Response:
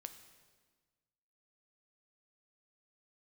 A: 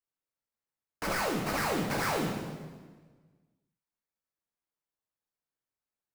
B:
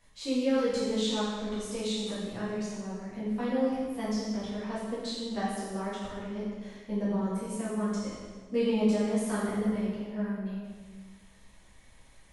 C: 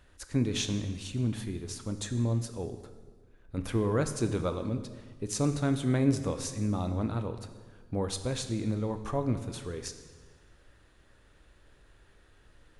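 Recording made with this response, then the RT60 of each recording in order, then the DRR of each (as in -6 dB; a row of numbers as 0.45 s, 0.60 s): C; 1.5 s, 1.5 s, 1.5 s; -1.5 dB, -10.5 dB, 8.0 dB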